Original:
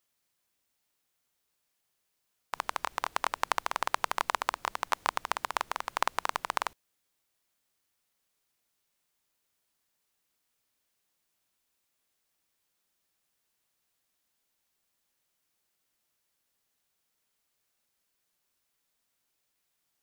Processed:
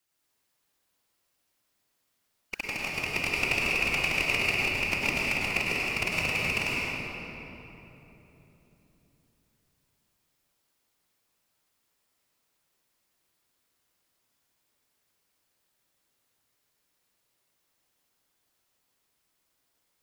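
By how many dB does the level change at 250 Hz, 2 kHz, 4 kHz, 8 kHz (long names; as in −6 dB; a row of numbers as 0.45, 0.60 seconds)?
+15.0, +10.5, +7.0, +3.0 decibels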